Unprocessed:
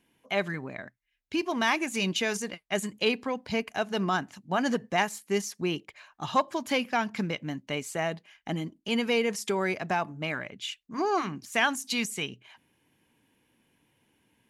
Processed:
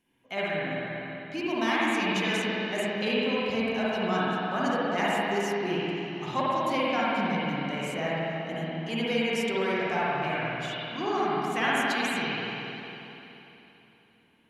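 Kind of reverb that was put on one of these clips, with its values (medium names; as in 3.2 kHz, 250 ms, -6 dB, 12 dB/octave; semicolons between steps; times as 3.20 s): spring tank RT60 3.3 s, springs 49/57 ms, chirp 40 ms, DRR -8 dB; trim -6.5 dB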